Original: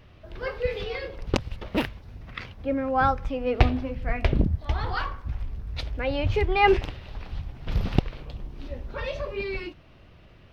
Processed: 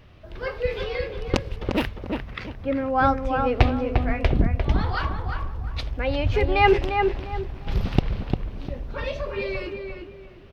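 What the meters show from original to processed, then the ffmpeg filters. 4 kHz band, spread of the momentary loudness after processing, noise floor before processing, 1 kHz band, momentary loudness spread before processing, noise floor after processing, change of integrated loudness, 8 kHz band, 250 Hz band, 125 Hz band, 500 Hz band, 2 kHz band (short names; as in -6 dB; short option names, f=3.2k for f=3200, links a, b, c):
+2.0 dB, 12 LU, -51 dBFS, +3.0 dB, 16 LU, -44 dBFS, +2.5 dB, n/a, +3.0 dB, +3.0 dB, +3.0 dB, +2.5 dB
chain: -filter_complex "[0:a]asplit=2[a][b];[b]adelay=350,lowpass=f=1.8k:p=1,volume=-4dB,asplit=2[c][d];[d]adelay=350,lowpass=f=1.8k:p=1,volume=0.32,asplit=2[e][f];[f]adelay=350,lowpass=f=1.8k:p=1,volume=0.32,asplit=2[g][h];[h]adelay=350,lowpass=f=1.8k:p=1,volume=0.32[i];[a][c][e][g][i]amix=inputs=5:normalize=0,volume=1.5dB"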